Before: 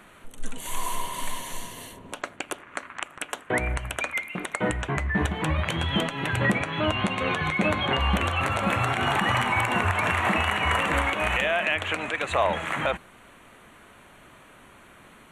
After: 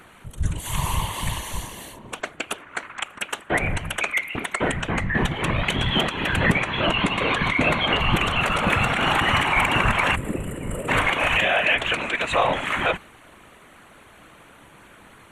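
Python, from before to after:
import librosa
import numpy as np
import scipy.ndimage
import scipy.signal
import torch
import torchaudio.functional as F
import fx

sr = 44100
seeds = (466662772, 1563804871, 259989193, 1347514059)

y = fx.spec_box(x, sr, start_s=10.15, length_s=0.74, low_hz=580.0, high_hz=7100.0, gain_db=-20)
y = fx.whisperise(y, sr, seeds[0])
y = fx.dynamic_eq(y, sr, hz=2900.0, q=1.1, threshold_db=-41.0, ratio=4.0, max_db=4)
y = y * 10.0 ** (2.5 / 20.0)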